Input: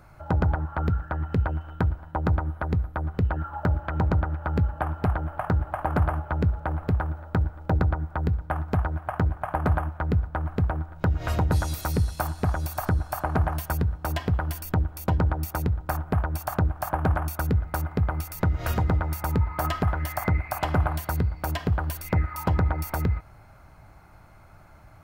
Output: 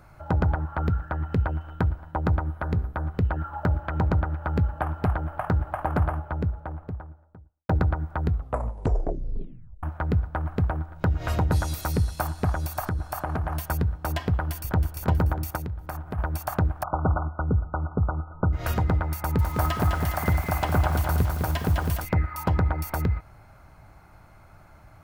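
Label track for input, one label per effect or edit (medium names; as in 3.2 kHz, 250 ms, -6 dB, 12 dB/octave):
2.550000	3.100000	de-hum 64.55 Hz, notches 27
5.680000	7.690000	studio fade out
8.230000	8.230000	tape stop 1.60 s
12.850000	13.550000	compression, threshold -23 dBFS
14.320000	14.860000	echo throw 320 ms, feedback 45%, level -9 dB
15.560000	16.190000	compression 2:1, threshold -34 dBFS
16.830000	18.530000	brick-wall FIR low-pass 1.5 kHz
19.180000	22.050000	bit-crushed delay 206 ms, feedback 55%, word length 7-bit, level -4.5 dB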